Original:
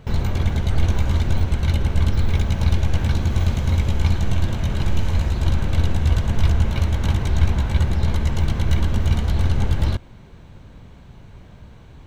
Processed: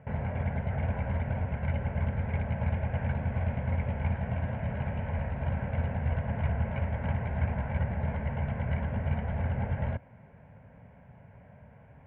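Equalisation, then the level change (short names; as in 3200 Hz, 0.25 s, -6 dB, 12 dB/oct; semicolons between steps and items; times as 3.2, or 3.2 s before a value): speaker cabinet 140–2200 Hz, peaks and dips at 280 Hz +7 dB, 590 Hz +4 dB, 1200 Hz +10 dB; low shelf 180 Hz +5 dB; fixed phaser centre 1200 Hz, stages 6; -5.0 dB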